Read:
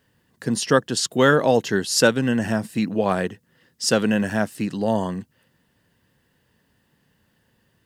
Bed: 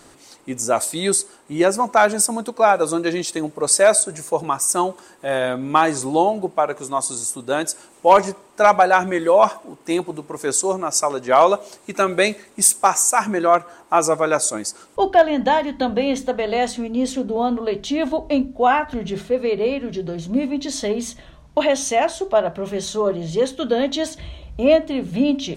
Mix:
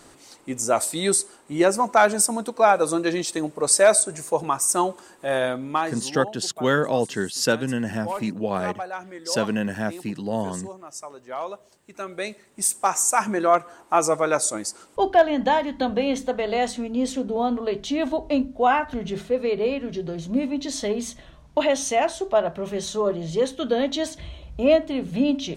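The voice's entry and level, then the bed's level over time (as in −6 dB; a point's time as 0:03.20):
5.45 s, −4.5 dB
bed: 0:05.44 −2 dB
0:06.33 −18 dB
0:11.76 −18 dB
0:13.13 −3 dB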